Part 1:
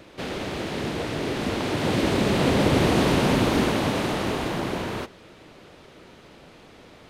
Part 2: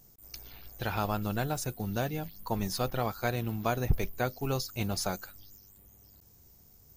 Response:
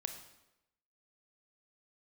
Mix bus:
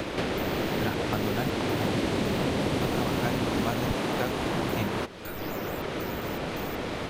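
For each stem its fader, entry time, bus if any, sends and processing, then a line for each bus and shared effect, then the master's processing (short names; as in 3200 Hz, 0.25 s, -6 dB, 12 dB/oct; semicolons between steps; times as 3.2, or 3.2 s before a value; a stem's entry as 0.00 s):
-11.5 dB, 0.00 s, no send, AGC gain up to 7 dB
-1.5 dB, 0.00 s, no send, step gate "..xxx.xx.x..x" 80 bpm -60 dB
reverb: off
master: three-band squash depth 100%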